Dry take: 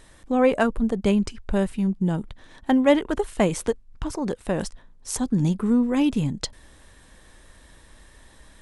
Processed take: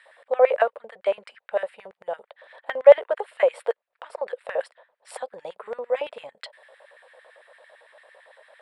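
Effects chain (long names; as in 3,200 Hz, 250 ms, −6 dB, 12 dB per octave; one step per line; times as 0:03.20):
moving average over 7 samples
in parallel at −3 dB: downward compressor, threshold −34 dBFS, peak gain reduction 20.5 dB
on the sum: auto-filter high-pass square 8.9 Hz 580–1,800 Hz
low shelf with overshoot 390 Hz −10 dB, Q 3
level −5.5 dB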